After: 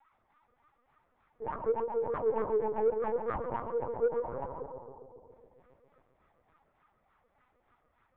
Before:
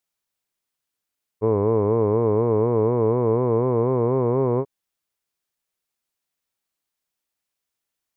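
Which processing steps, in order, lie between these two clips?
resonant low shelf 210 Hz -13.5 dB, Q 1.5; gate -14 dBFS, range -37 dB; upward compressor, threshold -30 dBFS; 2.10–4.38 s: waveshaping leveller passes 1; one-sided clip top -43 dBFS, bottom -28.5 dBFS; wah-wah 3.4 Hz 470–1200 Hz, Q 18; overdrive pedal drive 33 dB, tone 1.4 kHz, clips at -12.5 dBFS; tape echo 136 ms, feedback 84%, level -5 dB, low-pass 1.1 kHz; reverberation RT60 1.1 s, pre-delay 3 ms, DRR 15 dB; LPC vocoder at 8 kHz pitch kept

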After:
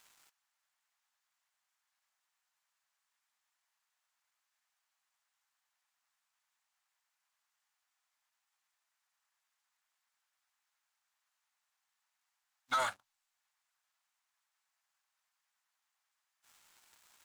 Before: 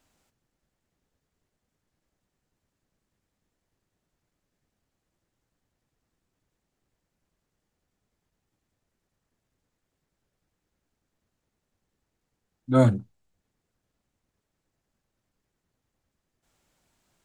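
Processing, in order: inverse Chebyshev high-pass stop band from 440 Hz, stop band 40 dB; compression 8:1, threshold -43 dBFS, peak gain reduction 16 dB; waveshaping leveller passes 3; trim +6.5 dB

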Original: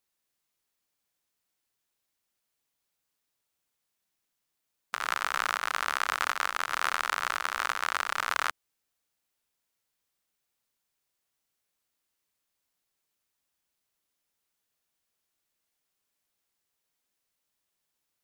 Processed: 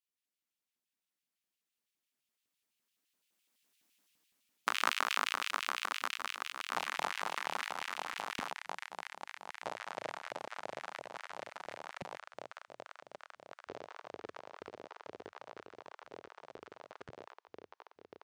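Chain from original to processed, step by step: Doppler pass-by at 3.95 s, 26 m/s, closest 11 m; LFO high-pass square 5.9 Hz 240–2700 Hz; ever faster or slower copies 154 ms, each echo -6 st, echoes 3, each echo -6 dB; trim +6 dB

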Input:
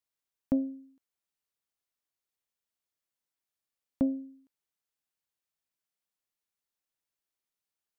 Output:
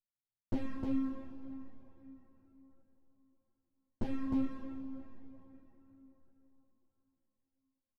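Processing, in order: comb filter that takes the minimum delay 8.7 ms; inverse Chebyshev low-pass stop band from 640 Hz, stop band 50 dB; peaking EQ 110 Hz +10 dB 0.55 oct; compression 12:1, threshold -45 dBFS, peak gain reduction 19 dB; waveshaping leveller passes 5; on a send: delay 307 ms -3.5 dB; on the sum: plate-style reverb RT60 4.3 s, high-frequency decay 0.65×, DRR 6.5 dB; three-phase chorus; trim +8.5 dB

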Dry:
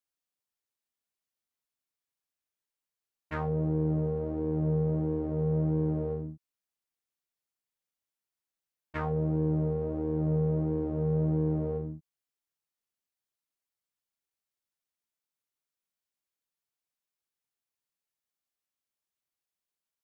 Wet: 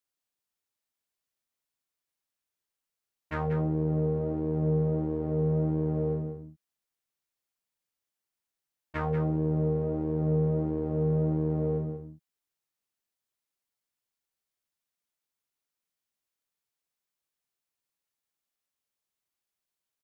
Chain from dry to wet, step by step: delay 188 ms -8.5 dB; trim +1.5 dB

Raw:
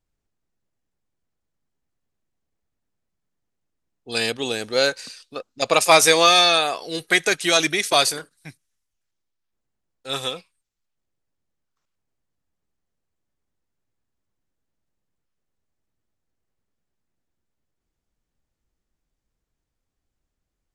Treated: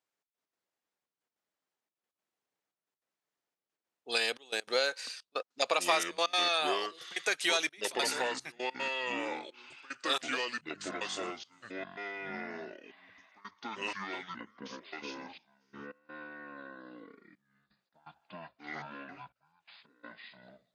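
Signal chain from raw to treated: Bessel high-pass 620 Hz, order 2; treble shelf 6.8 kHz -8.5 dB; compression, threshold -26 dBFS, peak gain reduction 14.5 dB; trance gate "xxx..x.xxxx" 199 bpm -24 dB; ever faster or slower copies 343 ms, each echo -5 st, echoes 3, each echo -6 dB

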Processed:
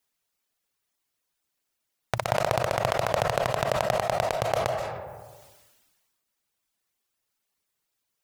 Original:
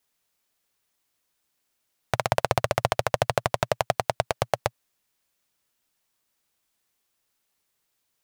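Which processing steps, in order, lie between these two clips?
reverb removal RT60 0.71 s; reverberation RT60 1.1 s, pre-delay 110 ms, DRR 16.5 dB; decay stretcher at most 35 dB/s; trim -2.5 dB

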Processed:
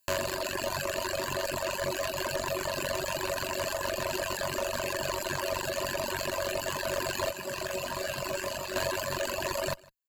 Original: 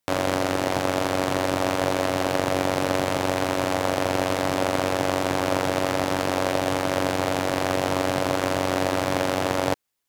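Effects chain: rippled EQ curve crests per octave 1.4, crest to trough 15 dB; reverb removal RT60 0.8 s; tilt EQ +2.5 dB/octave; valve stage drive 24 dB, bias 0.5; 7.31–8.76 s: feedback comb 63 Hz, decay 0.28 s, harmonics all, mix 70%; reverb removal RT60 1.6 s; delay 155 ms -24 dB; gain riding within 3 dB 0.5 s; trim +1.5 dB

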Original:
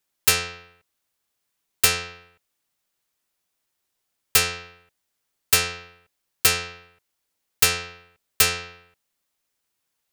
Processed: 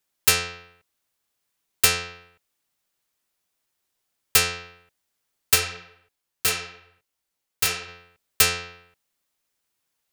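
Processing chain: 5.55–7.87 s: detune thickener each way 23 cents -> 36 cents

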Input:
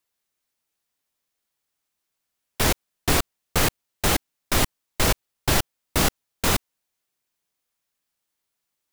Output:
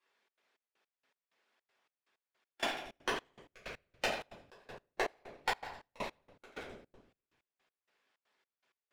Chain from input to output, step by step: saturation -20.5 dBFS, distortion -10 dB; peak limiter -31 dBFS, peak gain reduction 10.5 dB; band-pass 350–2900 Hz; inverted gate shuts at -35 dBFS, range -32 dB; two-band feedback delay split 480 Hz, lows 251 ms, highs 86 ms, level -16 dB; waveshaping leveller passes 3; simulated room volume 91 m³, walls mixed, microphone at 2.3 m; harmonic-percussive split percussive +5 dB; trance gate "xxx.xx..x..x.." 160 bpm -24 dB; trim +4 dB

